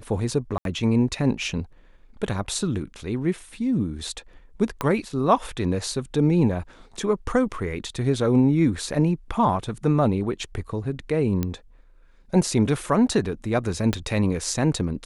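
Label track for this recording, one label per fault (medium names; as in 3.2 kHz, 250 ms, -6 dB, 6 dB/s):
0.580000	0.650000	dropout 72 ms
4.810000	4.810000	pop -11 dBFS
11.430000	11.430000	pop -12 dBFS
13.930000	13.930000	pop -11 dBFS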